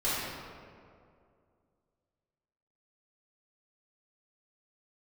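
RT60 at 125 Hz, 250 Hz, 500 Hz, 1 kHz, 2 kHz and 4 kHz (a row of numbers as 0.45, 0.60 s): 2.5, 2.5, 2.5, 2.1, 1.7, 1.1 s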